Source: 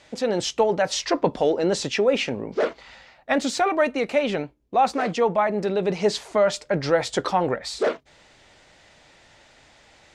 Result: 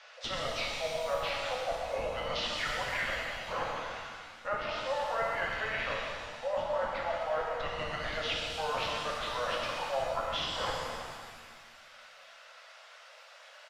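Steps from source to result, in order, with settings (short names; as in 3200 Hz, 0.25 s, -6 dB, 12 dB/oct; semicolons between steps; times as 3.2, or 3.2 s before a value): steep high-pass 690 Hz 96 dB/oct; in parallel at -9.5 dB: Schmitt trigger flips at -30 dBFS; on the sum: treble ducked by the level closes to 2500 Hz, closed at -23 dBFS; reverse; compressor, threshold -34 dBFS, peak gain reduction 17.5 dB; reverse; reverb removal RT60 1.5 s; frequency-shifting echo 97 ms, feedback 54%, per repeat +61 Hz, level -10 dB; speed mistake 45 rpm record played at 33 rpm; shimmer reverb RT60 1.8 s, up +7 st, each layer -8 dB, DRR -2 dB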